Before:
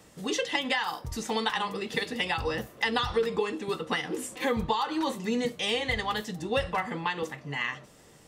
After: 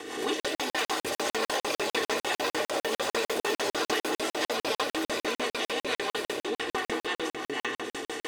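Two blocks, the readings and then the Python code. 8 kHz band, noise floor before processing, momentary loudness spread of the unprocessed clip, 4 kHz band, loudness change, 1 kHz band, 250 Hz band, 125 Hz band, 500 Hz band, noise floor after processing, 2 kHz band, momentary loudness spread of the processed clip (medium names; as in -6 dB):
+5.5 dB, -55 dBFS, 6 LU, +0.5 dB, 0.0 dB, -1.0 dB, -3.0 dB, -12.5 dB, +0.5 dB, under -85 dBFS, 0.0 dB, 4 LU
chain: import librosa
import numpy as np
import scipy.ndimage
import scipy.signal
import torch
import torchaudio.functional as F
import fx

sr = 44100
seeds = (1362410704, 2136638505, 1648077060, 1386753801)

p1 = fx.bin_compress(x, sr, power=0.4)
p2 = fx.rotary(p1, sr, hz=6.0)
p3 = fx.rider(p2, sr, range_db=5, speed_s=0.5)
p4 = fx.peak_eq(p3, sr, hz=12000.0, db=-4.5, octaves=1.0)
p5 = p4 + 0.89 * np.pad(p4, (int(2.7 * sr / 1000.0), 0))[:len(p4)]
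p6 = fx.echo_pitch(p5, sr, ms=223, semitones=5, count=3, db_per_echo=-3.0)
p7 = scipy.signal.sosfilt(scipy.signal.butter(2, 230.0, 'highpass', fs=sr, output='sos'), p6)
p8 = fx.high_shelf(p7, sr, hz=9000.0, db=5.5)
p9 = p8 + fx.echo_split(p8, sr, split_hz=460.0, low_ms=219, high_ms=644, feedback_pct=52, wet_db=-9, dry=0)
p10 = fx.buffer_crackle(p9, sr, first_s=0.4, period_s=0.15, block=2048, kind='zero')
p11 = fx.pre_swell(p10, sr, db_per_s=61.0)
y = p11 * librosa.db_to_amplitude(-8.5)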